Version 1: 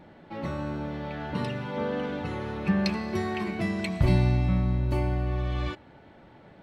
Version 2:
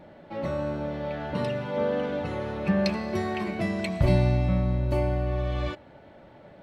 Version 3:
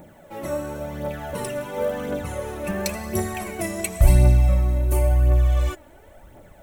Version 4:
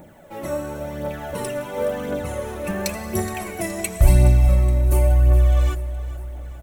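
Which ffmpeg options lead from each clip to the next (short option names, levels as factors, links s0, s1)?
-af "equalizer=f=590:w=4.2:g=8.5"
-af "aphaser=in_gain=1:out_gain=1:delay=3.5:decay=0.5:speed=0.94:type=triangular,aexciter=amount=15.1:drive=3.4:freq=6600,asubboost=boost=6.5:cutoff=56"
-af "aecho=1:1:420|840|1260|1680|2100:0.168|0.0907|0.049|0.0264|0.0143,volume=1.12"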